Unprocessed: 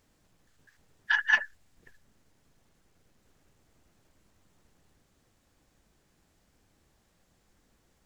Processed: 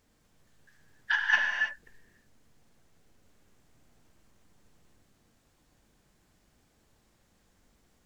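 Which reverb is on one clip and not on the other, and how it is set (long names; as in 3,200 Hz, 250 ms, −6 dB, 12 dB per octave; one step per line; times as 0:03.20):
reverb whose tail is shaped and stops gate 350 ms flat, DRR 1 dB
level −1.5 dB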